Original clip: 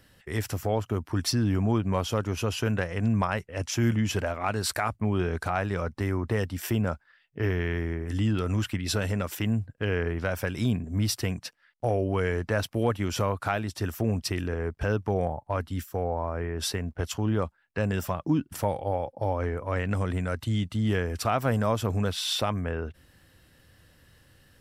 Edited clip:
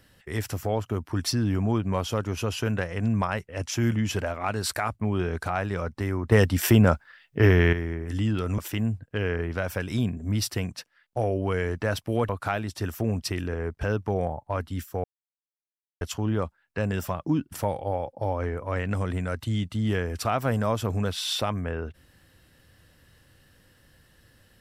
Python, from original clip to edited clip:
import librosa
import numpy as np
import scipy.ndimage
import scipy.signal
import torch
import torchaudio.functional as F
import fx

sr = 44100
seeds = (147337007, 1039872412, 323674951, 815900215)

y = fx.edit(x, sr, fx.clip_gain(start_s=6.32, length_s=1.41, db=9.0),
    fx.cut(start_s=8.58, length_s=0.67),
    fx.cut(start_s=12.96, length_s=0.33),
    fx.silence(start_s=16.04, length_s=0.97), tone=tone)